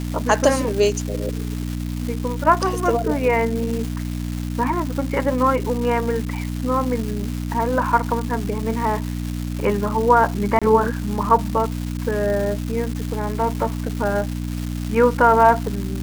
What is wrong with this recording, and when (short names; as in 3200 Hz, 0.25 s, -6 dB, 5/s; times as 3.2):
crackle 570/s -26 dBFS
hum 60 Hz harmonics 5 -26 dBFS
10.59–10.62 gap 26 ms